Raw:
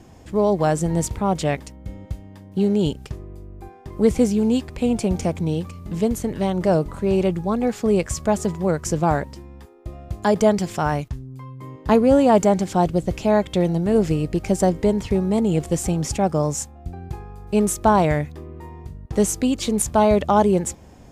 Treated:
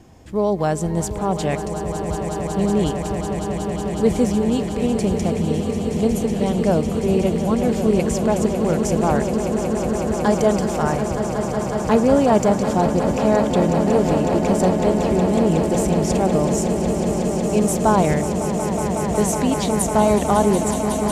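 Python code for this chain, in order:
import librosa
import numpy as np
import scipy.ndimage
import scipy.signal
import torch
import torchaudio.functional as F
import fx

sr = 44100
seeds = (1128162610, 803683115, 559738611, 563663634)

y = fx.echo_swell(x, sr, ms=184, loudest=8, wet_db=-11.0)
y = F.gain(torch.from_numpy(y), -1.0).numpy()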